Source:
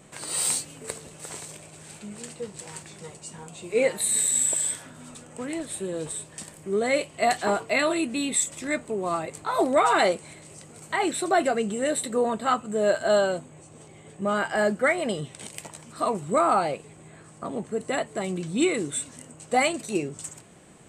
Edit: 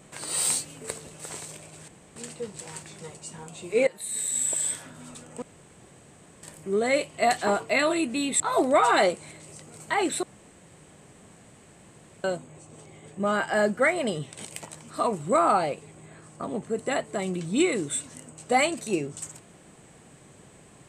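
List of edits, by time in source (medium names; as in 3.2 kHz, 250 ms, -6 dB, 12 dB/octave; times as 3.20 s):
1.88–2.16 s: room tone
3.87–4.77 s: fade in, from -16 dB
5.42–6.43 s: room tone
8.40–9.42 s: delete
11.25–13.26 s: room tone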